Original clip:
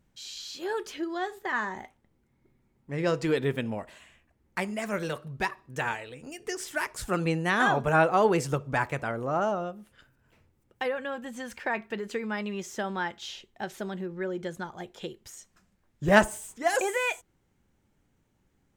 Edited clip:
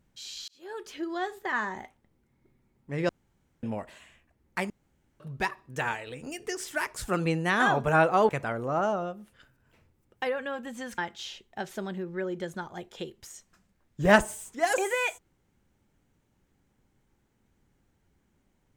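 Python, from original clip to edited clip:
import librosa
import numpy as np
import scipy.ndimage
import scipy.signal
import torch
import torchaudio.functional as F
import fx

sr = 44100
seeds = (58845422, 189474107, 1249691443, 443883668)

y = fx.edit(x, sr, fx.fade_in_span(start_s=0.48, length_s=0.65),
    fx.room_tone_fill(start_s=3.09, length_s=0.54),
    fx.room_tone_fill(start_s=4.7, length_s=0.5),
    fx.clip_gain(start_s=6.07, length_s=0.39, db=3.5),
    fx.cut(start_s=8.29, length_s=0.59),
    fx.cut(start_s=11.57, length_s=1.44), tone=tone)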